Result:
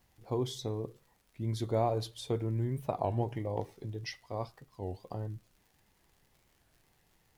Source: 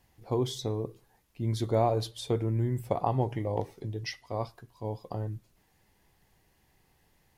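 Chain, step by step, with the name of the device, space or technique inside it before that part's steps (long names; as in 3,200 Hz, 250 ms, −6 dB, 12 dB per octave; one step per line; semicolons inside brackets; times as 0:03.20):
warped LP (wow of a warped record 33 1/3 rpm, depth 250 cents; surface crackle 100 per second −50 dBFS; pink noise bed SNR 40 dB)
level −4 dB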